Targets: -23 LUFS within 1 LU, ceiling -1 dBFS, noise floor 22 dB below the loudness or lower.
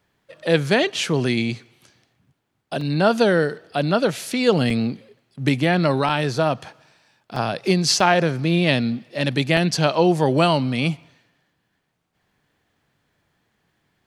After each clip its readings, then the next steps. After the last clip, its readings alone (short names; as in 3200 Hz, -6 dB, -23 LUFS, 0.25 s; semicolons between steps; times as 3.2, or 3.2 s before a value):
dropouts 6; longest dropout 3.0 ms; loudness -20.5 LUFS; peak -2.0 dBFS; loudness target -23.0 LUFS
-> interpolate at 2.81/4.7/6.09/7.36/8/9.57, 3 ms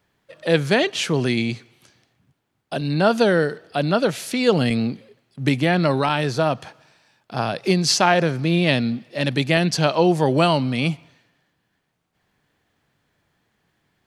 dropouts 0; loudness -20.5 LUFS; peak -2.0 dBFS; loudness target -23.0 LUFS
-> gain -2.5 dB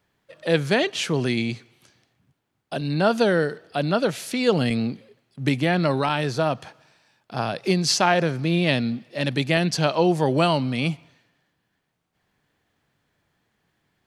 loudness -23.0 LUFS; peak -4.5 dBFS; noise floor -75 dBFS